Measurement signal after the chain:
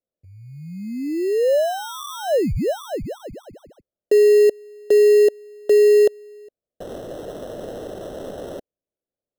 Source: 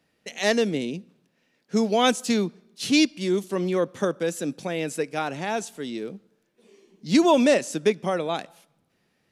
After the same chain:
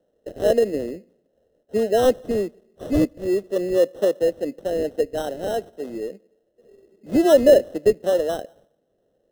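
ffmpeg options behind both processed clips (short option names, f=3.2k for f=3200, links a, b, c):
-af "highpass=370,lowpass=2.9k,acrusher=samples=19:mix=1:aa=0.000001,lowshelf=f=750:t=q:w=3:g=8.5,volume=-5dB"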